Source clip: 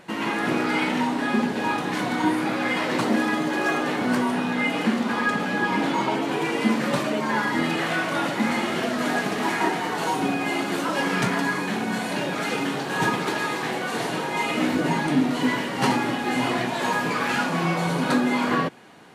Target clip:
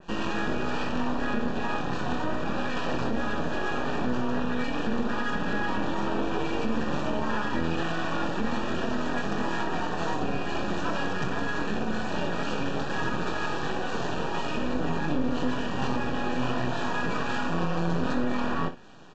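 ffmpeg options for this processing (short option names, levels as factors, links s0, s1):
-af "equalizer=f=66:w=0.39:g=8,alimiter=limit=0.15:level=0:latency=1:release=72,aresample=16000,aeval=exprs='max(val(0),0)':c=same,aresample=44100,asuperstop=centerf=2100:order=12:qfactor=5.4,aecho=1:1:24|63:0.398|0.237,adynamicequalizer=threshold=0.00562:dfrequency=3000:dqfactor=0.7:tfrequency=3000:tqfactor=0.7:attack=5:release=100:ratio=0.375:range=2.5:mode=cutabove:tftype=highshelf"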